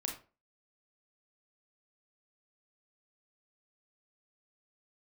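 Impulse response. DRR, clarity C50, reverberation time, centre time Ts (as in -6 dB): 1.5 dB, 7.5 dB, 0.35 s, 22 ms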